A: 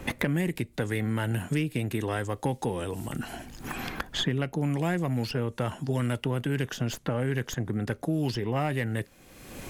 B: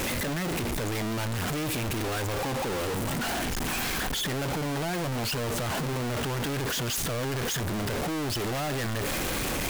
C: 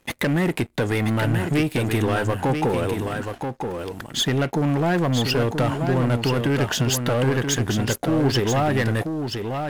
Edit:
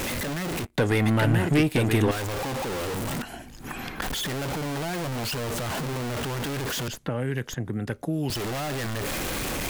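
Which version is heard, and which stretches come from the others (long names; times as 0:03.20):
B
0:00.65–0:02.11: punch in from C
0:03.22–0:04.02: punch in from A
0:06.88–0:08.30: punch in from A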